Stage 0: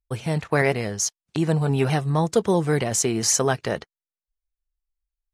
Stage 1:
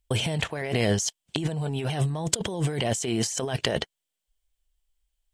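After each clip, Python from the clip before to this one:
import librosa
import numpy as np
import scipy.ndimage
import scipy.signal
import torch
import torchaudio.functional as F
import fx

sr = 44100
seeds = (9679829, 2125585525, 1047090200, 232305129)

y = fx.graphic_eq_31(x, sr, hz=(630, 1250, 3150, 8000), db=(3, -6, 10, 7))
y = fx.over_compress(y, sr, threshold_db=-29.0, ratio=-1.0)
y = y * librosa.db_to_amplitude(1.5)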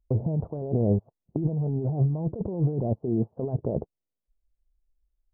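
y = scipy.ndimage.gaussian_filter1d(x, 14.0, mode='constant')
y = y * librosa.db_to_amplitude(3.0)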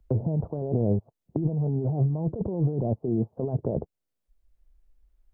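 y = fx.band_squash(x, sr, depth_pct=40)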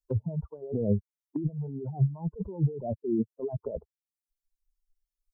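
y = fx.bin_expand(x, sr, power=3.0)
y = y * librosa.db_to_amplitude(3.0)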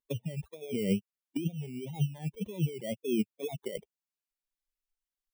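y = fx.bit_reversed(x, sr, seeds[0], block=16)
y = fx.wow_flutter(y, sr, seeds[1], rate_hz=2.1, depth_cents=140.0)
y = fx.low_shelf_res(y, sr, hz=120.0, db=-12.5, q=1.5)
y = y * librosa.db_to_amplitude(-3.5)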